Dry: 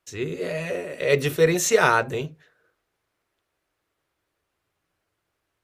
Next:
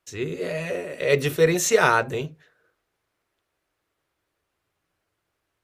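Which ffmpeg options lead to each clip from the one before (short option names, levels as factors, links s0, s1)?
-af anull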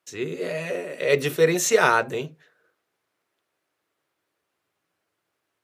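-af "highpass=160"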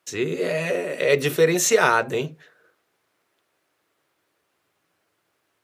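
-af "acompressor=threshold=0.0316:ratio=1.5,volume=2.11"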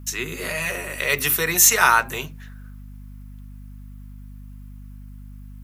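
-filter_complex "[0:a]equalizer=f=500:t=o:w=1:g=-9,equalizer=f=1000:t=o:w=1:g=7,equalizer=f=4000:t=o:w=1:g=-6,equalizer=f=8000:t=o:w=1:g=-6,acrossover=split=200[s0][s1];[s1]crystalizer=i=9:c=0[s2];[s0][s2]amix=inputs=2:normalize=0,aeval=exprs='val(0)+0.0224*(sin(2*PI*50*n/s)+sin(2*PI*2*50*n/s)/2+sin(2*PI*3*50*n/s)/3+sin(2*PI*4*50*n/s)/4+sin(2*PI*5*50*n/s)/5)':c=same,volume=0.562"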